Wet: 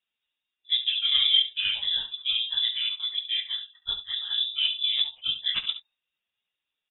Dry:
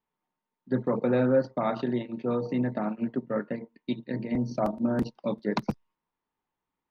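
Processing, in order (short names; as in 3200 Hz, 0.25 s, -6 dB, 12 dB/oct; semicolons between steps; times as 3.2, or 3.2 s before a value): phase scrambler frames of 50 ms; 0.77–3 gate -33 dBFS, range -13 dB; early reflections 18 ms -12.5 dB, 69 ms -12 dB; inverted band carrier 3700 Hz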